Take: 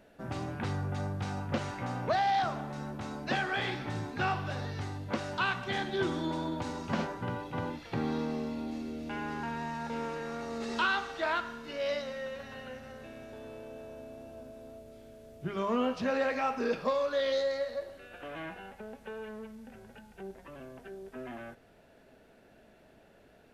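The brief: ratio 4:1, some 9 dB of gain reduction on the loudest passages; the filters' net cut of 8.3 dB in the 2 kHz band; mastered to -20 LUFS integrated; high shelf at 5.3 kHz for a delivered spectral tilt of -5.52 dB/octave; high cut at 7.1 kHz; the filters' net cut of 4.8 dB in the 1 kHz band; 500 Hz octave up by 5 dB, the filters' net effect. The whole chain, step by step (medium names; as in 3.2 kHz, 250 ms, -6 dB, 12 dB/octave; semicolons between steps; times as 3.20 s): low-pass 7.1 kHz; peaking EQ 500 Hz +8.5 dB; peaking EQ 1 kHz -9 dB; peaking EQ 2 kHz -9 dB; treble shelf 5.3 kHz +4 dB; compression 4:1, threshold -32 dBFS; trim +17.5 dB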